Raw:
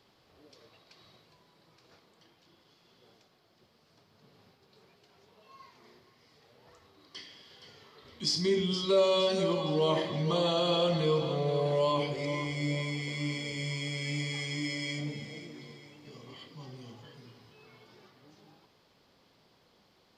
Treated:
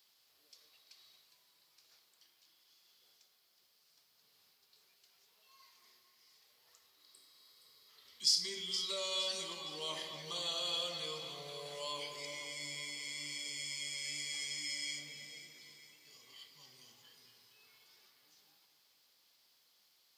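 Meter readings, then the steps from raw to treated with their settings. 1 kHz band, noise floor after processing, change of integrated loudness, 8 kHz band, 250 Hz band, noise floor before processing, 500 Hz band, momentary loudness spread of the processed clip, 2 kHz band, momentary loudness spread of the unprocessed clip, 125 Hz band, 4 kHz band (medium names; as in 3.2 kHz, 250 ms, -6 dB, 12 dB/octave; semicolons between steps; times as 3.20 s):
-13.5 dB, -72 dBFS, -7.5 dB, +4.0 dB, -23.5 dB, -67 dBFS, -19.0 dB, 21 LU, -7.0 dB, 20 LU, -26.0 dB, -2.0 dB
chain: pre-emphasis filter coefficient 0.97; spectral replace 7.09–7.86 s, 520–7500 Hz before; treble shelf 7 kHz +4.5 dB; on a send: bucket-brigade echo 225 ms, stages 4096, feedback 63%, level -10 dB; on the sum: trim +2.5 dB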